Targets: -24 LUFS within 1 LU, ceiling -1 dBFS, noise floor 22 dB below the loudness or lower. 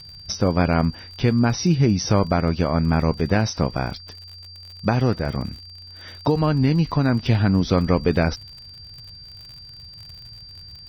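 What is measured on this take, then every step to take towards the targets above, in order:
tick rate 54 per s; steady tone 4.7 kHz; tone level -40 dBFS; loudness -21.0 LUFS; peak level -7.0 dBFS; loudness target -24.0 LUFS
-> de-click; band-stop 4.7 kHz, Q 30; trim -3 dB

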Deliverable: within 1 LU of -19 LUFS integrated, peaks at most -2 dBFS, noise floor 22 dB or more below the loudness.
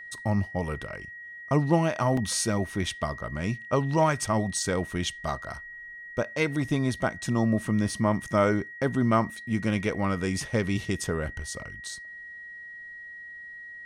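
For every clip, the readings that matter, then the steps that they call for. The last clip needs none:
dropouts 1; longest dropout 3.7 ms; steady tone 1.9 kHz; tone level -40 dBFS; loudness -27.5 LUFS; peak level -9.0 dBFS; loudness target -19.0 LUFS
-> interpolate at 2.17 s, 3.7 ms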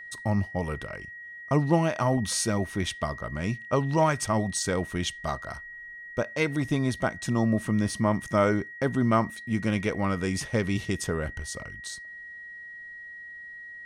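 dropouts 0; steady tone 1.9 kHz; tone level -40 dBFS
-> band-stop 1.9 kHz, Q 30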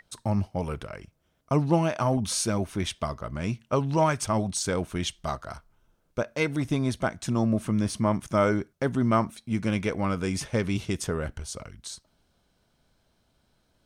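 steady tone not found; loudness -27.5 LUFS; peak level -9.0 dBFS; loudness target -19.0 LUFS
-> trim +8.5 dB; peak limiter -2 dBFS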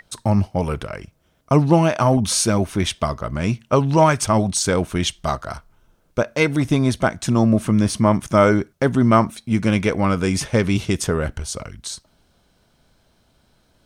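loudness -19.5 LUFS; peak level -2.0 dBFS; noise floor -62 dBFS

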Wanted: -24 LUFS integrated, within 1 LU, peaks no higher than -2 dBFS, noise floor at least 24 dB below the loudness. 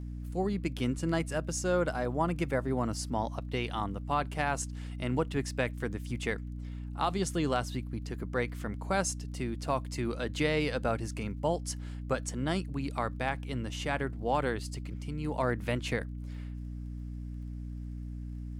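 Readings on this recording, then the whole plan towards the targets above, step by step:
tick rate 25 per s; hum 60 Hz; highest harmonic 300 Hz; hum level -37 dBFS; loudness -33.5 LUFS; peak level -16.0 dBFS; loudness target -24.0 LUFS
-> de-click; de-hum 60 Hz, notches 5; trim +9.5 dB

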